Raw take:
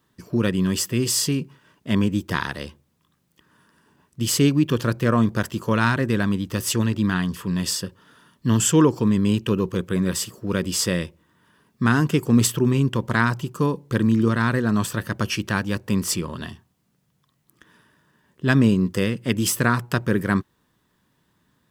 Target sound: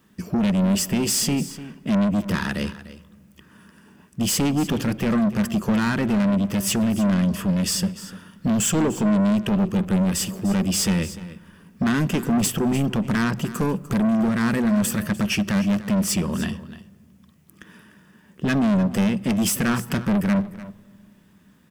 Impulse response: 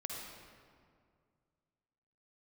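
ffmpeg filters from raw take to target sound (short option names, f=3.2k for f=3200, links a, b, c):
-filter_complex "[0:a]equalizer=f=125:t=o:w=0.33:g=-6,equalizer=f=200:t=o:w=0.33:g=12,equalizer=f=1k:t=o:w=0.33:g=-4,equalizer=f=2.5k:t=o:w=0.33:g=4,equalizer=f=4k:t=o:w=0.33:g=-5,asplit=2[a][b];[b]acompressor=threshold=-26dB:ratio=6,volume=0dB[c];[a][c]amix=inputs=2:normalize=0,asoftclip=type=tanh:threshold=-18dB,aecho=1:1:298:0.168,asplit=2[d][e];[1:a]atrim=start_sample=2205,lowshelf=f=220:g=10.5[f];[e][f]afir=irnorm=-1:irlink=0,volume=-21dB[g];[d][g]amix=inputs=2:normalize=0,asettb=1/sr,asplit=3[h][i][j];[h]atrim=end=13.314[k];[i]atrim=start=13.31:end=15.04,asetpts=PTS-STARTPTS,afade=t=in:d=0.004:c=qsin,afade=t=out:st=1.726:d=0.004:c=qsin,adynamicequalizer=threshold=0.00708:dfrequency=6900:dqfactor=0.7:tfrequency=6900:tqfactor=0.7:attack=5:release=100:ratio=0.375:range=3:mode=boostabove:tftype=highshelf[l];[j]atrim=start=15.036[m];[k][l]acrossfade=d=0.004:c1=hsin:c2=qsin[n];[n][m]acrossfade=d=0.004:c1=qsin:c2=hsin"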